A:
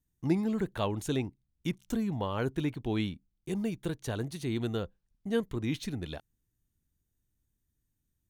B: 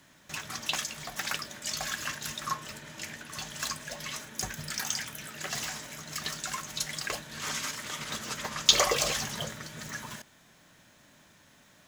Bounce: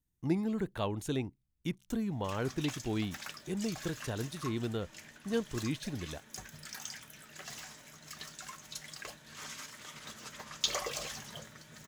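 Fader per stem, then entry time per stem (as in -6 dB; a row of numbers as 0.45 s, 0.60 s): -3.0 dB, -11.0 dB; 0.00 s, 1.95 s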